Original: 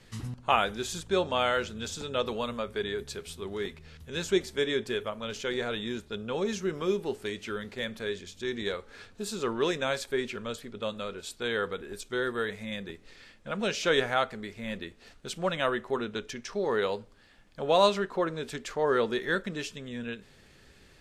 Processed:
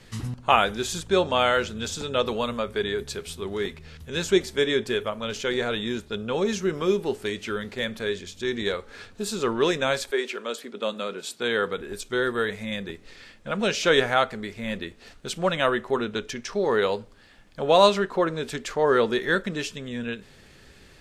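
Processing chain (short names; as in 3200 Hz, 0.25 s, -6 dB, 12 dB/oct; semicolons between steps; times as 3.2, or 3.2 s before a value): 10.1–11.76 HPF 370 Hz -> 100 Hz 24 dB/oct; gain +5.5 dB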